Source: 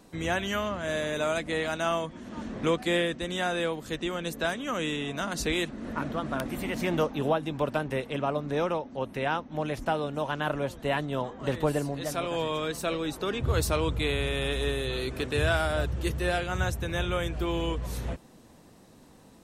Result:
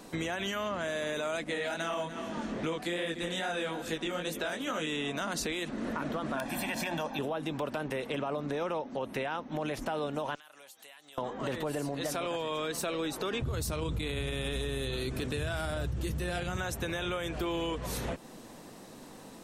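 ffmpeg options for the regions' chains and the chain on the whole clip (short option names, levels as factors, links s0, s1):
-filter_complex "[0:a]asettb=1/sr,asplit=3[s0][s1][s2];[s0]atrim=end=1.444[s3];[s1]atrim=start=1.44:end=4.87,asetpts=PTS-STARTPTS,afade=t=in:d=0.004:c=qsin,afade=t=out:st=3.426:d=0.004:c=qsin,bandreject=f=1100:w=14,flanger=delay=18.5:depth=5.3:speed=2.4,aecho=1:1:290|580|870:0.158|0.0491|0.0152,atrim=end_sample=151263[s4];[s2]atrim=start=4.866[s5];[s3][s4]acrossfade=d=0.004:c1=hsin:c2=qsin[s6];[s6][s5]acrossfade=d=0.004:c1=qsin:c2=hsin,asettb=1/sr,asplit=3[s7][s8][s9];[s7]atrim=end=6.374[s10];[s8]atrim=start=6.37:end=7.19,asetpts=PTS-STARTPTS,afade=t=in:d=0.004:c=qsin,afade=t=out:st=0.816:d=0.004:c=qsin,lowshelf=f=180:g=-8.5,bandreject=f=60:t=h:w=6,bandreject=f=120:t=h:w=6,bandreject=f=180:t=h:w=6,bandreject=f=240:t=h:w=6,bandreject=f=300:t=h:w=6,bandreject=f=360:t=h:w=6,bandreject=f=420:t=h:w=6,bandreject=f=480:t=h:w=6,bandreject=f=540:t=h:w=6,aecho=1:1:1.2:0.67,atrim=end_sample=36162[s11];[s9]atrim=start=7.186[s12];[s10][s11]acrossfade=d=0.004:c1=hsin:c2=qsin[s13];[s13][s12]acrossfade=d=0.004:c1=qsin:c2=hsin,asettb=1/sr,asplit=3[s14][s15][s16];[s14]atrim=end=10.354[s17];[s15]atrim=start=10.35:end=11.18,asetpts=PTS-STARTPTS,afade=t=in:d=0.004:c=qsin,afade=t=out:st=0.826:d=0.004:c=qsin,aderivative,acompressor=threshold=0.00158:ratio=10:attack=3.2:release=140:knee=1:detection=peak,aeval=exprs='val(0)+0.000112*sin(2*PI*790*n/s)':c=same[s18];[s16]atrim=start=11.176[s19];[s17][s18]acrossfade=d=0.004:c1=hsin:c2=qsin[s20];[s20][s19]acrossfade=d=0.004:c1=qsin:c2=hsin,asettb=1/sr,asplit=3[s21][s22][s23];[s21]atrim=end=13.424[s24];[s22]atrim=start=13.42:end=16.57,asetpts=PTS-STARTPTS,afade=t=in:d=0.004:c=qsin,afade=t=out:st=3.146:d=0.004:c=qsin,bass=f=250:g=13,treble=f=4000:g=5,flanger=delay=2.4:depth=2.6:regen=-84:speed=1.2:shape=triangular[s25];[s23]atrim=start=16.566[s26];[s24][s25]acrossfade=d=0.004:c1=hsin:c2=qsin[s27];[s27][s26]acrossfade=d=0.004:c1=qsin:c2=hsin,equalizer=f=62:w=0.57:g=-11.5,alimiter=level_in=1.19:limit=0.0631:level=0:latency=1:release=33,volume=0.841,acompressor=threshold=0.01:ratio=3,volume=2.37"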